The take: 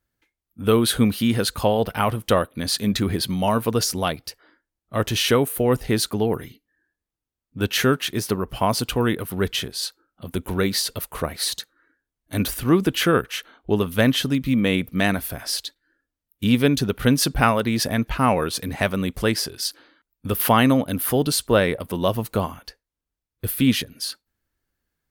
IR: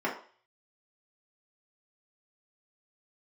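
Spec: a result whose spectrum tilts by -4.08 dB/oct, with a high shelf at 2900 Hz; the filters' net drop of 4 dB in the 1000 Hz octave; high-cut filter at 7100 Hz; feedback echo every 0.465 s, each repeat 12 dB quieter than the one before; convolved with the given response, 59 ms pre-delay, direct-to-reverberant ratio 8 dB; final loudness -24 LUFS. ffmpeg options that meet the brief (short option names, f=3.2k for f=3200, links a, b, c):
-filter_complex "[0:a]lowpass=7.1k,equalizer=f=1k:t=o:g=-6.5,highshelf=f=2.9k:g=7.5,aecho=1:1:465|930|1395:0.251|0.0628|0.0157,asplit=2[a][b];[1:a]atrim=start_sample=2205,adelay=59[c];[b][c]afir=irnorm=-1:irlink=0,volume=-17.5dB[d];[a][d]amix=inputs=2:normalize=0,volume=-3dB"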